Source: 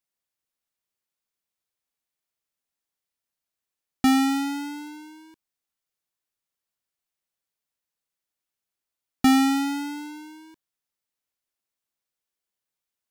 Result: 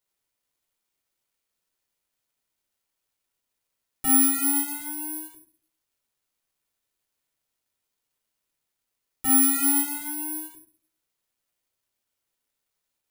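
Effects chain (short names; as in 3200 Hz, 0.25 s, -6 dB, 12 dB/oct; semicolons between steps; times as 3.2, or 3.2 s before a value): companded quantiser 8-bit; 4.26–4.75 LPF 8500 Hz 24 dB/oct; limiter -26.5 dBFS, peak gain reduction 12.5 dB; reverb, pre-delay 5 ms, DRR -2.5 dB; careless resampling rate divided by 4×, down none, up zero stuff; gain -7 dB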